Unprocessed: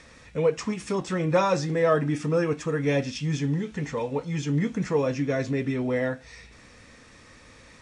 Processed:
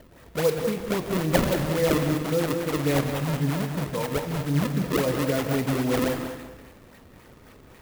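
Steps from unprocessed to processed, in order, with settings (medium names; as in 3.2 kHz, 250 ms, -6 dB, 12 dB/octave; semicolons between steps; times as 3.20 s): 1.44–2.86 s: peaking EQ 1.1 kHz -5.5 dB 1.6 oct; decimation with a swept rate 33×, swing 160% 3.7 Hz; filtered feedback delay 191 ms, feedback 32%, low-pass 4.3 kHz, level -8.5 dB; gated-style reverb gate 280 ms flat, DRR 8 dB; sampling jitter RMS 0.031 ms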